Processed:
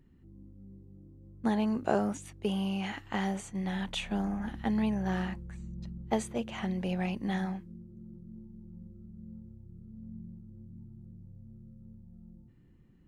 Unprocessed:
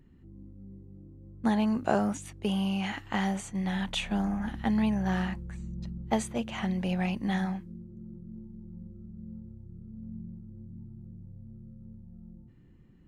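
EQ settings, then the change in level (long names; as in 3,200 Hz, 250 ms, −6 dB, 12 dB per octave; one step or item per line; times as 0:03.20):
dynamic equaliser 420 Hz, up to +5 dB, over −45 dBFS, Q 1.8
−3.5 dB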